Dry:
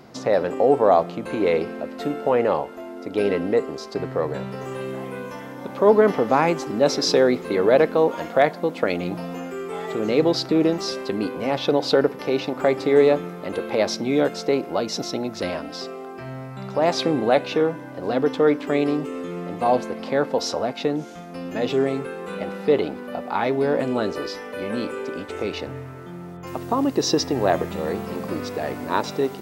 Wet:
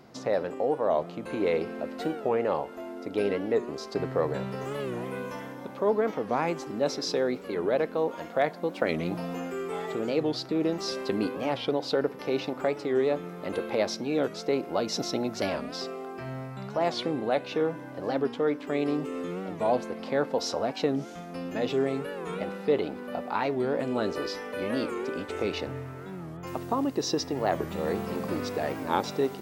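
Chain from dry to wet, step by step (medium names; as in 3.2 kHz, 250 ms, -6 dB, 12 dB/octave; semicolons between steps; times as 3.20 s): gain riding within 4 dB 0.5 s; 27.94–28.55 s: hard clipper -17 dBFS, distortion -39 dB; warped record 45 rpm, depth 160 cents; trim -6.5 dB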